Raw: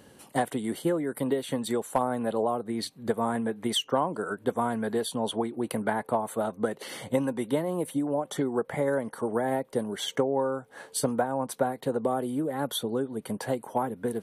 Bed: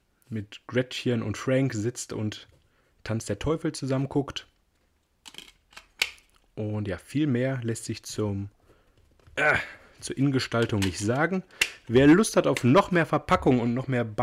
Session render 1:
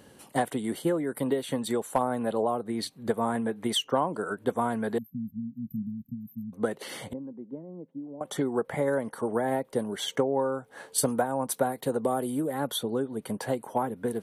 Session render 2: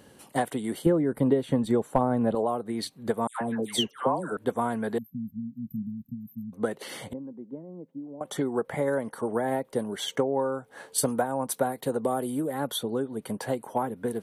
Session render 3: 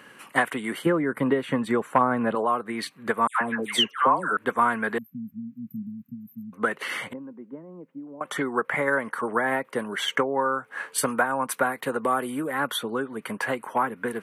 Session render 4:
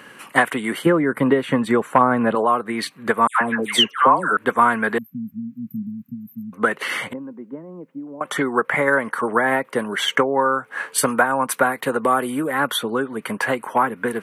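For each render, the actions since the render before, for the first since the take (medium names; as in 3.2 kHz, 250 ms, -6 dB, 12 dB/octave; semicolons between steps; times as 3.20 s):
4.98–6.53 s: brick-wall FIR band-stop 260–12000 Hz; 7.13–8.21 s: ladder band-pass 250 Hz, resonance 30%; 10.98–12.59 s: treble shelf 6.5 kHz +10 dB
0.86–2.35 s: tilt EQ -3 dB/octave; 3.27–4.37 s: phase dispersion lows, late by 140 ms, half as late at 1.4 kHz
high-pass 150 Hz 12 dB/octave; high-order bell 1.7 kHz +13.5 dB
trim +6 dB; peak limiter -1 dBFS, peak gain reduction 1 dB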